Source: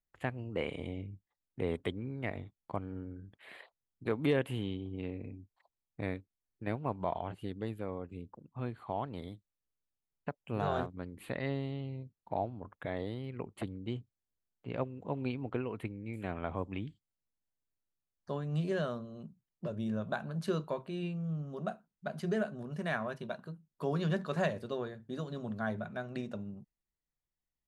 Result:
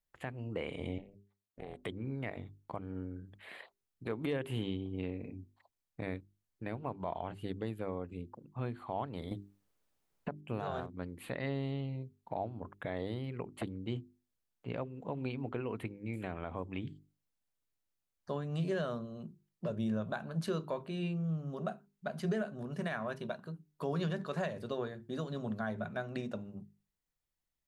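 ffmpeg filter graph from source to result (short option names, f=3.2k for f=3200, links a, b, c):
-filter_complex "[0:a]asettb=1/sr,asplit=3[a][b][c];[a]atrim=end=0.984[d];[b]atrim=start=0.98:end=1.85,asetpts=PTS-STARTPTS,afade=t=in:d=0.004:c=qsin,afade=t=out:st=0.866:d=0.004:c=qsin,highpass=160,acompressor=threshold=-46dB:ratio=2:attack=3.2:release=140:knee=1:detection=peak,tremolo=f=300:d=1[e];[c]atrim=start=1.846[f];[d][e]acrossfade=d=0.004:c1=hsin:c2=qsin[g];[g][f]acrossfade=d=0.004:c1=qsin:c2=hsin,asettb=1/sr,asplit=3[h][i][j];[h]atrim=end=9.314[k];[i]atrim=start=9.31:end=10.41,asetpts=PTS-STARTPTS,afade=t=in:d=0.004:c=qsin,afade=t=out:st=1.096:d=0.004:c=qsin,equalizer=f=480:w=0.33:g=7,acontrast=79[l];[j]atrim=start=10.406[m];[k][l]acrossfade=d=0.004:c1=hsin:c2=qsin[n];[n][m]acrossfade=d=0.004:c1=qsin:c2=hsin,bandreject=f=50:t=h:w=6,bandreject=f=100:t=h:w=6,bandreject=f=150:t=h:w=6,bandreject=f=200:t=h:w=6,bandreject=f=250:t=h:w=6,bandreject=f=300:t=h:w=6,bandreject=f=350:t=h:w=6,bandreject=f=400:t=h:w=6,alimiter=level_in=3.5dB:limit=-24dB:level=0:latency=1:release=213,volume=-3.5dB,volume=2dB"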